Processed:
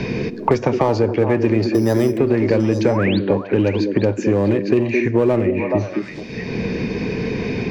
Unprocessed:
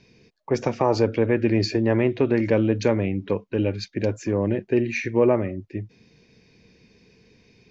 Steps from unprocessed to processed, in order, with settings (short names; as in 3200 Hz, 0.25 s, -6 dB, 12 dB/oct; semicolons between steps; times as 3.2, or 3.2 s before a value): high shelf 4100 Hz -10 dB; in parallel at -6 dB: overloaded stage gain 21 dB; 1.74–2.18 on the sum: sample-rate reducer 5500 Hz, jitter 0%; 2.84–3.19 painted sound rise 420–4800 Hz -29 dBFS; on a send: delay with a stepping band-pass 0.213 s, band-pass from 300 Hz, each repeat 1.4 oct, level -4.5 dB; on the sum: plate-style reverb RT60 0.76 s, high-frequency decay 0.9×, DRR 17.5 dB; three-band squash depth 100%; gain +1.5 dB